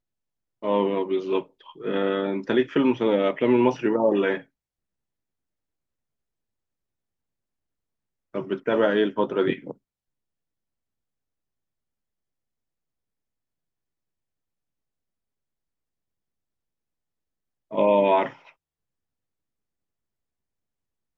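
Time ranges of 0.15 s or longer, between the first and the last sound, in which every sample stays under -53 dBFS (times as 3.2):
4.46–8.34
9.77–17.71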